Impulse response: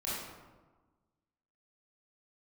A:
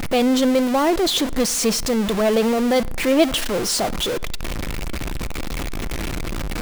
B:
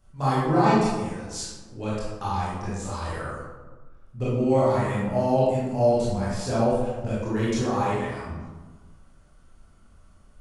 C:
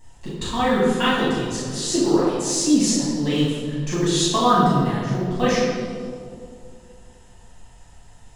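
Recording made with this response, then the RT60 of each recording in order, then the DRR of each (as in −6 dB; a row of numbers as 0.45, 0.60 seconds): B; 1.0, 1.3, 2.3 seconds; 18.5, −9.5, −10.0 decibels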